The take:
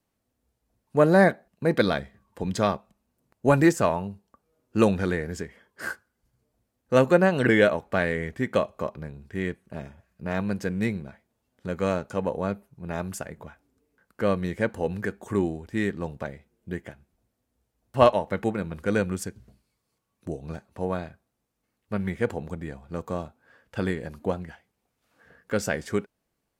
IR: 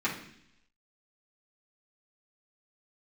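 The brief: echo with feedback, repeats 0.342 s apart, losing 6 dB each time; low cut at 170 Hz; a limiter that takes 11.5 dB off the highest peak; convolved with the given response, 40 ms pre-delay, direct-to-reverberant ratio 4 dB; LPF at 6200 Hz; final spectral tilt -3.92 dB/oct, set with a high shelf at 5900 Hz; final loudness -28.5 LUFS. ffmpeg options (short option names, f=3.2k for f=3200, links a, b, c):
-filter_complex "[0:a]highpass=170,lowpass=6.2k,highshelf=f=5.9k:g=-7.5,alimiter=limit=-14.5dB:level=0:latency=1,aecho=1:1:342|684|1026|1368|1710|2052:0.501|0.251|0.125|0.0626|0.0313|0.0157,asplit=2[a][b];[1:a]atrim=start_sample=2205,adelay=40[c];[b][c]afir=irnorm=-1:irlink=0,volume=-13dB[d];[a][d]amix=inputs=2:normalize=0,volume=-0.5dB"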